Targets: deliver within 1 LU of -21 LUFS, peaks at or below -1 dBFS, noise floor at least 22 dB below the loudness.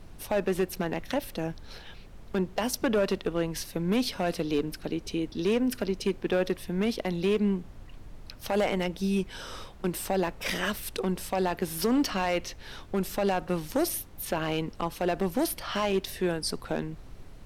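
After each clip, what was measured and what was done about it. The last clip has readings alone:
clipped samples 1.5%; clipping level -19.5 dBFS; noise floor -47 dBFS; noise floor target -52 dBFS; loudness -29.5 LUFS; peak level -19.5 dBFS; loudness target -21.0 LUFS
-> clip repair -19.5 dBFS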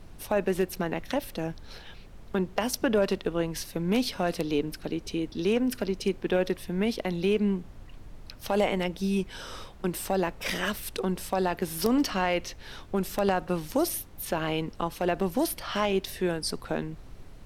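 clipped samples 0.0%; noise floor -47 dBFS; noise floor target -51 dBFS
-> noise print and reduce 6 dB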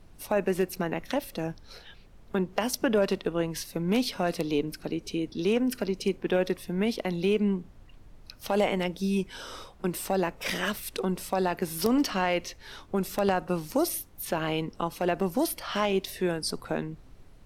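noise floor -52 dBFS; loudness -29.0 LUFS; peak level -10.5 dBFS; loudness target -21.0 LUFS
-> trim +8 dB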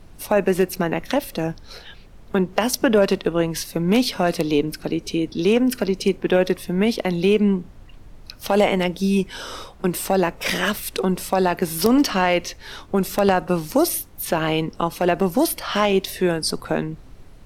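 loudness -21.0 LUFS; peak level -2.5 dBFS; noise floor -44 dBFS

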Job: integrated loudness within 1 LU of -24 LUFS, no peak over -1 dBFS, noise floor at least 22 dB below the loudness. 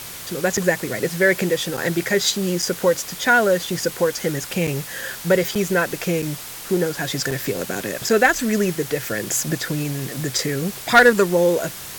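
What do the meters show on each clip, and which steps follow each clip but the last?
dropouts 8; longest dropout 5.4 ms; noise floor -35 dBFS; noise floor target -43 dBFS; loudness -20.5 LUFS; peak level -2.5 dBFS; loudness target -24.0 LUFS
-> interpolate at 0.57/1.77/2.62/4.67/5.55/6.22/7.31/8.09 s, 5.4 ms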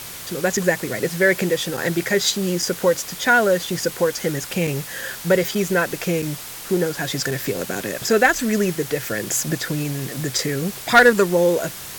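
dropouts 0; noise floor -35 dBFS; noise floor target -43 dBFS
-> noise reduction 8 dB, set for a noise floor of -35 dBFS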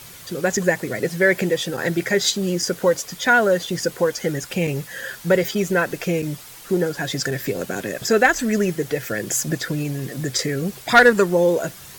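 noise floor -41 dBFS; noise floor target -43 dBFS
-> noise reduction 6 dB, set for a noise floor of -41 dBFS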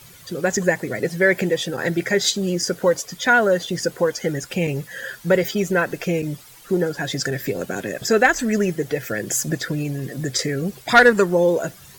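noise floor -45 dBFS; loudness -20.5 LUFS; peak level -3.0 dBFS; loudness target -24.0 LUFS
-> trim -3.5 dB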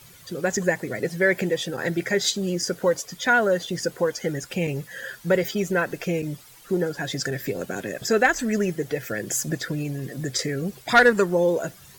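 loudness -24.0 LUFS; peak level -6.5 dBFS; noise floor -49 dBFS

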